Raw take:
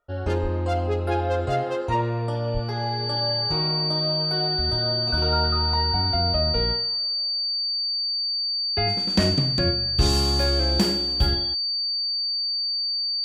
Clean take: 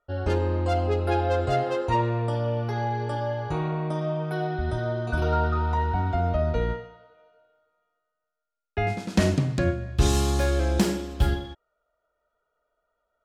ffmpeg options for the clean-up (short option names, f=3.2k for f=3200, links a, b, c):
-filter_complex "[0:a]bandreject=f=4.6k:w=30,asplit=3[a][b][c];[a]afade=t=out:st=0.42:d=0.02[d];[b]highpass=f=140:w=0.5412,highpass=f=140:w=1.3066,afade=t=in:st=0.42:d=0.02,afade=t=out:st=0.54:d=0.02[e];[c]afade=t=in:st=0.54:d=0.02[f];[d][e][f]amix=inputs=3:normalize=0,asplit=3[g][h][i];[g]afade=t=out:st=2.53:d=0.02[j];[h]highpass=f=140:w=0.5412,highpass=f=140:w=1.3066,afade=t=in:st=2.53:d=0.02,afade=t=out:st=2.65:d=0.02[k];[i]afade=t=in:st=2.65:d=0.02[l];[j][k][l]amix=inputs=3:normalize=0"